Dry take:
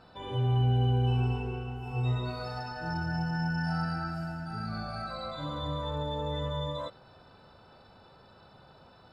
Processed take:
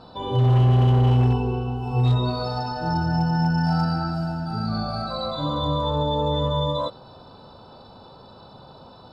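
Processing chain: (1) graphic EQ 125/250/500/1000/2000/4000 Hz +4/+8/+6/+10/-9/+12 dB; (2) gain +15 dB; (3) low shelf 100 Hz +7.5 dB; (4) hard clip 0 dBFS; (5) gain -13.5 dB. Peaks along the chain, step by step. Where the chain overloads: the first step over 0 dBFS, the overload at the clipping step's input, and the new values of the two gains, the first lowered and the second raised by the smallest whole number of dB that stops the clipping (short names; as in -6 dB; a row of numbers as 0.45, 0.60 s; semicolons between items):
-11.0, +4.0, +6.0, 0.0, -13.5 dBFS; step 2, 6.0 dB; step 2 +9 dB, step 5 -7.5 dB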